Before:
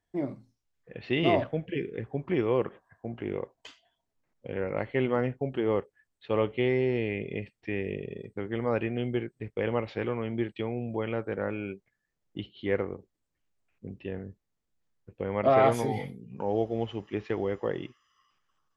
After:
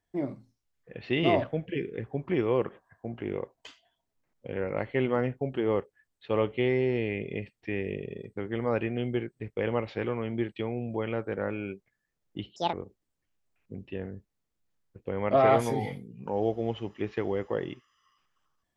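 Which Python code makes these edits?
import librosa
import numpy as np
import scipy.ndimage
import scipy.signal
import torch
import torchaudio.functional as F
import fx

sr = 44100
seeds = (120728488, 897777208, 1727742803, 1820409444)

y = fx.edit(x, sr, fx.speed_span(start_s=12.56, length_s=0.3, speed=1.73), tone=tone)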